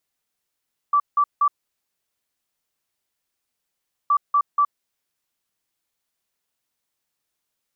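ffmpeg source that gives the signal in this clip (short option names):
-f lavfi -i "aevalsrc='0.2*sin(2*PI*1160*t)*clip(min(mod(mod(t,3.17),0.24),0.07-mod(mod(t,3.17),0.24))/0.005,0,1)*lt(mod(t,3.17),0.72)':d=6.34:s=44100"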